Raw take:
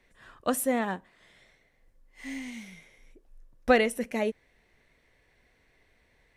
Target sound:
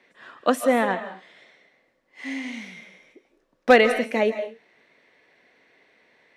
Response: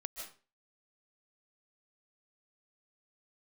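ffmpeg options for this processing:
-filter_complex "[0:a]highpass=f=100:p=1,acrossover=split=180 5500:gain=0.0631 1 0.178[a][b][c];[a][b][c]amix=inputs=3:normalize=0,asoftclip=type=hard:threshold=-13dB,asplit=2[d][e];[1:a]atrim=start_sample=2205,afade=t=out:st=0.32:d=0.01,atrim=end_sample=14553,asetrate=42336,aresample=44100[f];[e][f]afir=irnorm=-1:irlink=0,volume=0dB[g];[d][g]amix=inputs=2:normalize=0,volume=3.5dB"

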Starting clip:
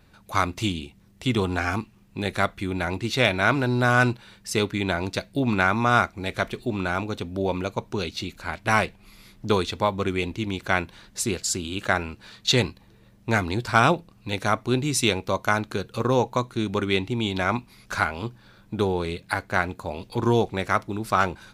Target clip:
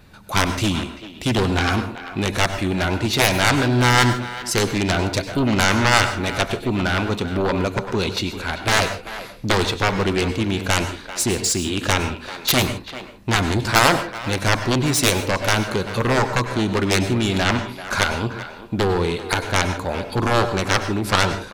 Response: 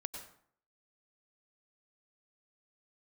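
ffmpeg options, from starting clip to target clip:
-filter_complex "[0:a]aeval=exprs='0.596*(cos(1*acos(clip(val(0)/0.596,-1,1)))-cos(1*PI/2))+0.266*(cos(7*acos(clip(val(0)/0.596,-1,1)))-cos(7*PI/2))':c=same,asplit=2[a][b];[b]adelay=390,highpass=300,lowpass=3.4k,asoftclip=type=hard:threshold=-13.5dB,volume=-12dB[c];[a][c]amix=inputs=2:normalize=0,asplit=2[d][e];[1:a]atrim=start_sample=2205,afade=t=out:st=0.22:d=0.01,atrim=end_sample=10143[f];[e][f]afir=irnorm=-1:irlink=0,volume=4.5dB[g];[d][g]amix=inputs=2:normalize=0,volume=-5.5dB"

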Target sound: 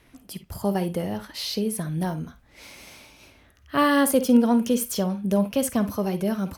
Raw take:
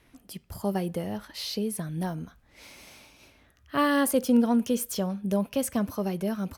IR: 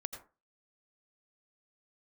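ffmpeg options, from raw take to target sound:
-filter_complex "[0:a]asplit=2[a][b];[1:a]atrim=start_sample=2205,afade=t=out:st=0.17:d=0.01,atrim=end_sample=7938,asetrate=74970,aresample=44100[c];[b][c]afir=irnorm=-1:irlink=0,volume=6.5dB[d];[a][d]amix=inputs=2:normalize=0,volume=-2dB"

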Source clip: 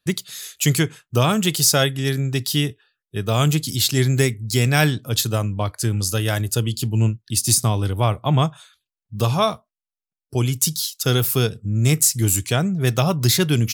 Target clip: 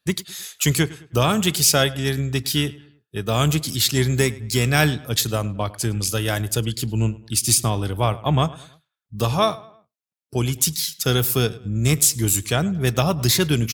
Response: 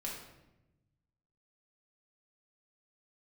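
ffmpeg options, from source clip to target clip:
-filter_complex "[0:a]highpass=f=110:p=1,asplit=2[a][b];[b]asetrate=22050,aresample=44100,atempo=2,volume=-18dB[c];[a][c]amix=inputs=2:normalize=0,asplit=2[d][e];[e]adelay=105,lowpass=f=3.1k:p=1,volume=-19dB,asplit=2[f][g];[g]adelay=105,lowpass=f=3.1k:p=1,volume=0.42,asplit=2[h][i];[i]adelay=105,lowpass=f=3.1k:p=1,volume=0.42[j];[d][f][h][j]amix=inputs=4:normalize=0"

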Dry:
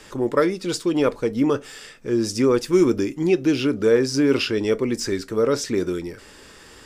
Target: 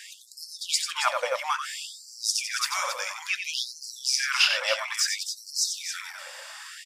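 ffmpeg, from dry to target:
-af "aecho=1:1:90.38|274.1:0.447|0.355,afftfilt=real='re*gte(b*sr/1024,490*pow(4200/490,0.5+0.5*sin(2*PI*0.59*pts/sr)))':imag='im*gte(b*sr/1024,490*pow(4200/490,0.5+0.5*sin(2*PI*0.59*pts/sr)))':win_size=1024:overlap=0.75,volume=4.5dB"

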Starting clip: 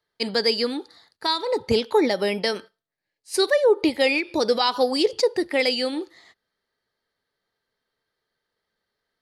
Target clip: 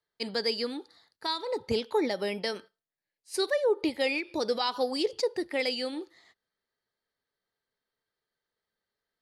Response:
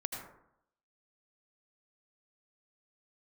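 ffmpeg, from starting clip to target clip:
-af "volume=-8dB"

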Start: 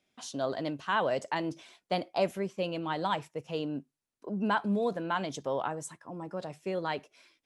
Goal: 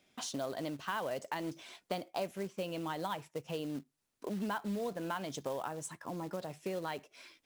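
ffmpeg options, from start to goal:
-af "acompressor=threshold=-46dB:ratio=3,acrusher=bits=4:mode=log:mix=0:aa=0.000001,volume=6.5dB"

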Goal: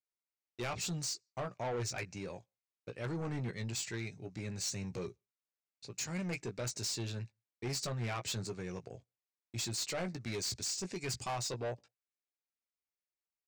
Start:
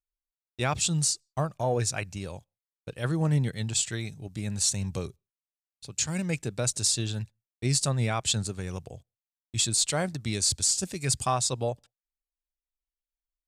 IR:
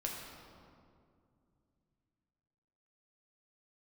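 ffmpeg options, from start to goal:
-filter_complex "[0:a]highpass=120,equalizer=f=150:t=q:w=4:g=-4,equalizer=f=390:t=q:w=4:g=4,equalizer=f=2.2k:t=q:w=4:g=5,equalizer=f=3.3k:t=q:w=4:g=-8,lowpass=f=6.6k:w=0.5412,lowpass=f=6.6k:w=1.3066,asplit=2[a][b];[b]adelay=17,volume=-9dB[c];[a][c]amix=inputs=2:normalize=0,asoftclip=type=tanh:threshold=-29dB,volume=-4dB"

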